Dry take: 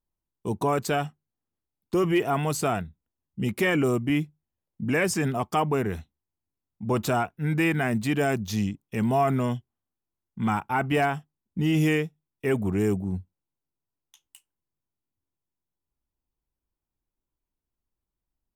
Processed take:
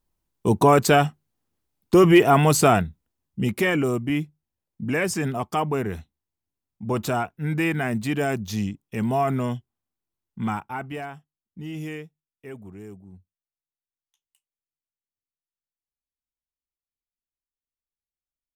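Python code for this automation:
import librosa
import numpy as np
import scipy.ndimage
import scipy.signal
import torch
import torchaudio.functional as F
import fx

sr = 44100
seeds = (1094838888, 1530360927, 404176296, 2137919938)

y = fx.gain(x, sr, db=fx.line((2.75, 9.0), (3.88, 0.0), (10.41, 0.0), (11.03, -11.0), (12.01, -11.0), (12.87, -17.0)))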